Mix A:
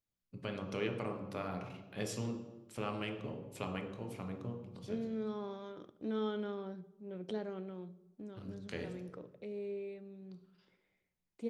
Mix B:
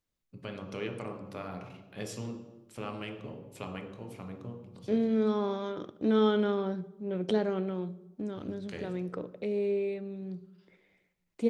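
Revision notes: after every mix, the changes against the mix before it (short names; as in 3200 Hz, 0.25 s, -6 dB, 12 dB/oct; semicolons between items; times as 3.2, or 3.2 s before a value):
second voice +11.5 dB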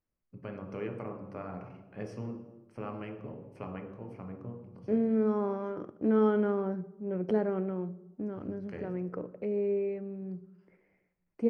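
master: add running mean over 12 samples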